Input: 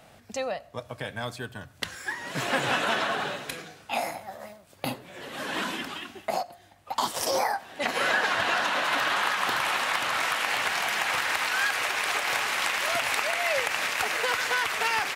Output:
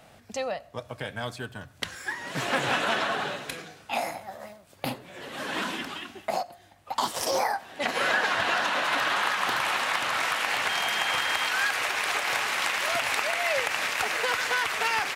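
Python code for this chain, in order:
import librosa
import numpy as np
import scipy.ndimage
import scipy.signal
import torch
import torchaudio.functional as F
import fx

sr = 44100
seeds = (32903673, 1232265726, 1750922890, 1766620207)

y = fx.dmg_tone(x, sr, hz=3200.0, level_db=-33.0, at=(10.68, 11.49), fade=0.02)
y = fx.doppler_dist(y, sr, depth_ms=0.16)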